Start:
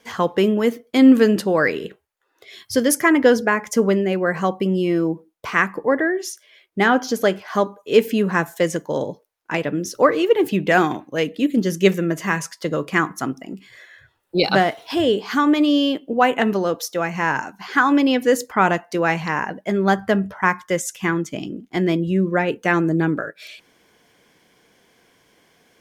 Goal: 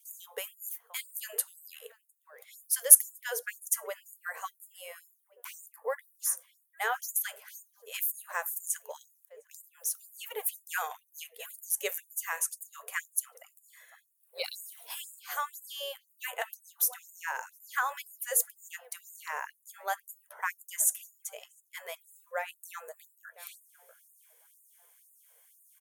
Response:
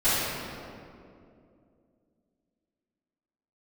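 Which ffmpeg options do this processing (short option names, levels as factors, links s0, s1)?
-filter_complex "[0:a]bandreject=f=7600:w=16,asplit=2[s0][s1];[s1]adelay=706,lowpass=f=1100:p=1,volume=0.119,asplit=2[s2][s3];[s3]adelay=706,lowpass=f=1100:p=1,volume=0.46,asplit=2[s4][s5];[s5]adelay=706,lowpass=f=1100:p=1,volume=0.46,asplit=2[s6][s7];[s7]adelay=706,lowpass=f=1100:p=1,volume=0.46[s8];[s2][s4][s6][s8]amix=inputs=4:normalize=0[s9];[s0][s9]amix=inputs=2:normalize=0,aexciter=amount=11.3:drive=5.2:freq=7400,afftfilt=real='re*gte(b*sr/1024,390*pow(6800/390,0.5+0.5*sin(2*PI*2*pts/sr)))':imag='im*gte(b*sr/1024,390*pow(6800/390,0.5+0.5*sin(2*PI*2*pts/sr)))':win_size=1024:overlap=0.75,volume=0.224"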